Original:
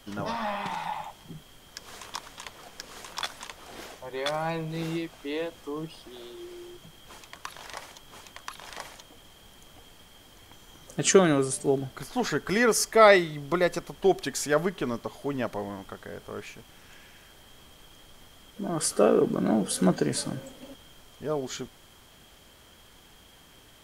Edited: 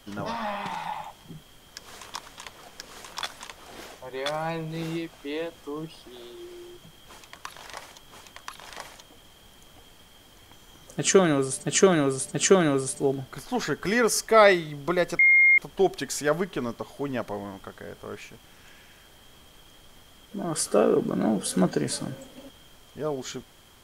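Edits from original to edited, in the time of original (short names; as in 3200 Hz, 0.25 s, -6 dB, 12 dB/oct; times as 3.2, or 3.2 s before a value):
10.96–11.64 loop, 3 plays
13.83 add tone 2130 Hz -14 dBFS 0.39 s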